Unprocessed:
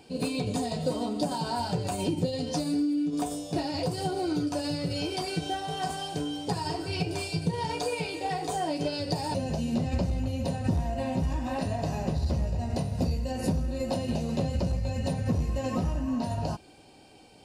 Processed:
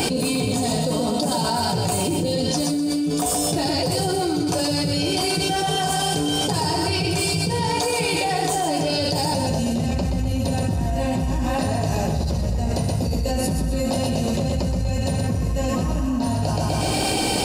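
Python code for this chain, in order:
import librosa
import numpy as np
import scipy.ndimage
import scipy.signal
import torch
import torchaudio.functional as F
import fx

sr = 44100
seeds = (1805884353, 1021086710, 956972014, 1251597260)

y = fx.high_shelf(x, sr, hz=6600.0, db=10.0)
y = fx.echo_feedback(y, sr, ms=125, feedback_pct=38, wet_db=-5)
y = fx.env_flatten(y, sr, amount_pct=100)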